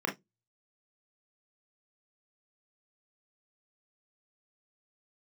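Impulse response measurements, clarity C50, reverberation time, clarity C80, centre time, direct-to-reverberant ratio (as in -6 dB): 14.0 dB, 0.15 s, 27.5 dB, 20 ms, 0.0 dB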